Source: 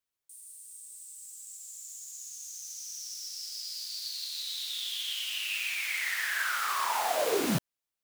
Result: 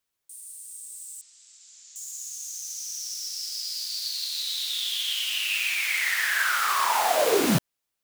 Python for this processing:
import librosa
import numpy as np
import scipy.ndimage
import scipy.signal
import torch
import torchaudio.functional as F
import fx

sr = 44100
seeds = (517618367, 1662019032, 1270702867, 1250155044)

y = fx.lowpass(x, sr, hz=5300.0, slope=24, at=(1.21, 1.96))
y = F.gain(torch.from_numpy(y), 6.5).numpy()